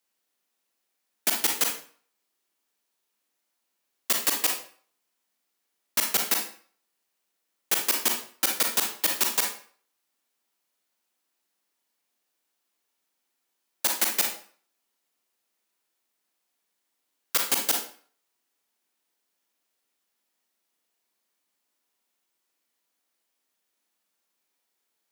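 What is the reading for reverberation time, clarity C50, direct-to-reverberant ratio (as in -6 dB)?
0.50 s, 5.0 dB, 1.5 dB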